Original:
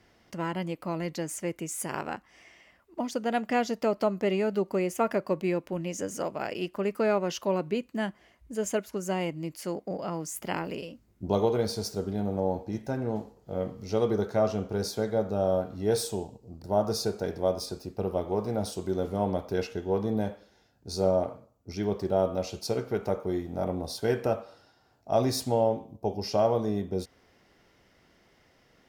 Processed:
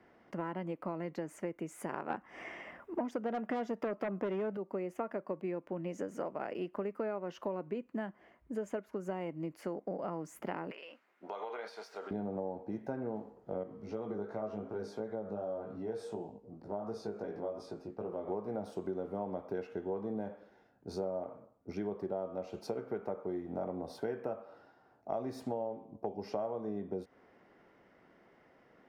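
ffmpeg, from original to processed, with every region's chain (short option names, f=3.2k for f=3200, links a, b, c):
-filter_complex "[0:a]asettb=1/sr,asplit=3[a][b][c];[a]atrim=end=2.104[d];[b]atrim=start=2.1:end=4.57,asetpts=PTS-STARTPTS,afade=t=in:d=0.004:c=qsin,afade=t=out:st=2.466:d=0.004:c=qsin,bandreject=f=4.3k:w=6.3,aeval=exprs='0.2*sin(PI/2*2.51*val(0)/0.2)':c=same[e];[c]atrim=start=4.566[f];[d][e]acrossfade=d=0.004:c1=hsin:c2=qsin[g];[g][f]acrossfade=d=0.004:c1=qsin:c2=hsin,asettb=1/sr,asplit=3[h][i][j];[h]atrim=end=10.714[k];[i]atrim=start=10.71:end=12.11,asetpts=PTS-STARTPTS,afade=t=in:d=0.004:c=qsin,afade=t=out:st=1.396:d=0.004:c=qsin,highpass=670,equalizer=f=2.4k:w=0.47:g=14,acompressor=threshold=-40dB:ratio=4:attack=3.2:release=140:knee=1:detection=peak[l];[j]atrim=start=12.106[m];[k][l]acrossfade=d=0.004:c1=hsin:c2=qsin[n];[n][m]acrossfade=d=0.004:c1=qsin:c2=hsin,asettb=1/sr,asplit=3[o][p][q];[o]atrim=end=13.634[r];[p]atrim=start=13.63:end=18.28,asetpts=PTS-STARTPTS,afade=t=in:d=0.004:c=qsin,afade=t=out:st=4.646:d=0.004:c=qsin,lowpass=9.5k,acompressor=threshold=-34dB:ratio=2:attack=3.2:release=140:knee=1:detection=peak,flanger=delay=17.5:depth=2.3:speed=2.7[s];[q]atrim=start=18.276[t];[r][s]acrossfade=d=0.004:c1=hsin:c2=qsin[u];[u][t]acrossfade=d=0.004:c1=qsin:c2=hsin,acrossover=split=160 2100:gain=0.2 1 0.112[v][w][x];[v][w][x]amix=inputs=3:normalize=0,acompressor=threshold=-36dB:ratio=6,volume=1.5dB"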